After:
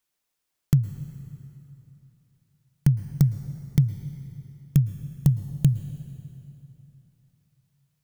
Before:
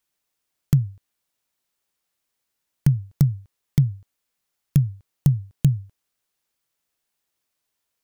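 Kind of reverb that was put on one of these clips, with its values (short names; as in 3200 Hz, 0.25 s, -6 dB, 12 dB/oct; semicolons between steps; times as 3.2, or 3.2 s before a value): plate-style reverb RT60 3.1 s, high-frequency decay 0.8×, pre-delay 0.1 s, DRR 11.5 dB; gain -1.5 dB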